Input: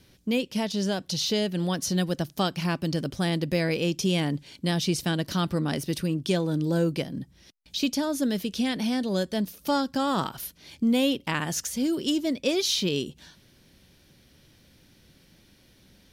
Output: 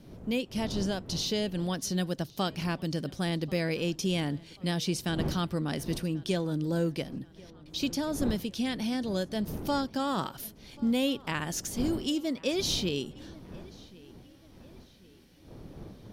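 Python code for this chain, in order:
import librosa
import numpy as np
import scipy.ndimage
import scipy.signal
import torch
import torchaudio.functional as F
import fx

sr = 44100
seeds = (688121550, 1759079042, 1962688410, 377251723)

y = fx.dmg_wind(x, sr, seeds[0], corner_hz=270.0, level_db=-39.0)
y = fx.echo_filtered(y, sr, ms=1087, feedback_pct=49, hz=4400.0, wet_db=-22.5)
y = y * 10.0 ** (-4.5 / 20.0)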